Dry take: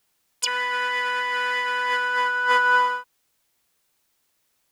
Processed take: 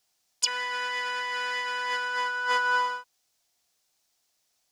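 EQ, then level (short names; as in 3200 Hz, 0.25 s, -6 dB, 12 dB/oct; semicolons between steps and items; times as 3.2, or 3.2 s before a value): bell 710 Hz +9 dB 0.36 oct; bell 5500 Hz +10 dB 1.4 oct; -8.0 dB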